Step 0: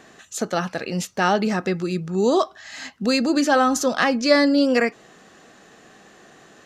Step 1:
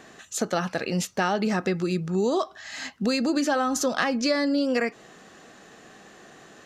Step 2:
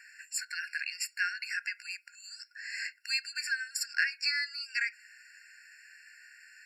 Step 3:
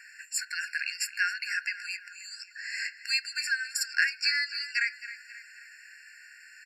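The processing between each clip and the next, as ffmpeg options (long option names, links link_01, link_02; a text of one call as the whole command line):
ffmpeg -i in.wav -af "acompressor=threshold=-20dB:ratio=10" out.wav
ffmpeg -i in.wav -af "afftfilt=real='re*eq(mod(floor(b*sr/1024/1400),2),1)':imag='im*eq(mod(floor(b*sr/1024/1400),2),1)':win_size=1024:overlap=0.75" out.wav
ffmpeg -i in.wav -filter_complex "[0:a]asplit=2[link_01][link_02];[link_02]adelay=268,lowpass=frequency=4700:poles=1,volume=-13dB,asplit=2[link_03][link_04];[link_04]adelay=268,lowpass=frequency=4700:poles=1,volume=0.52,asplit=2[link_05][link_06];[link_06]adelay=268,lowpass=frequency=4700:poles=1,volume=0.52,asplit=2[link_07][link_08];[link_08]adelay=268,lowpass=frequency=4700:poles=1,volume=0.52,asplit=2[link_09][link_10];[link_10]adelay=268,lowpass=frequency=4700:poles=1,volume=0.52[link_11];[link_01][link_03][link_05][link_07][link_09][link_11]amix=inputs=6:normalize=0,volume=3.5dB" out.wav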